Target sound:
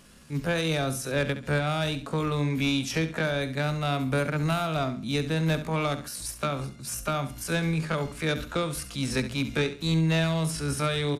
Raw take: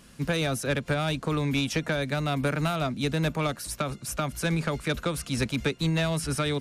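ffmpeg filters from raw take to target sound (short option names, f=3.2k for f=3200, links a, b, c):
-filter_complex "[0:a]bandreject=f=60:t=h:w=6,bandreject=f=120:t=h:w=6,bandreject=f=180:t=h:w=6,bandreject=f=240:t=h:w=6,bandreject=f=300:t=h:w=6,atempo=0.59,asplit=2[a][b];[b]aecho=0:1:68|136|204:0.251|0.0728|0.0211[c];[a][c]amix=inputs=2:normalize=0"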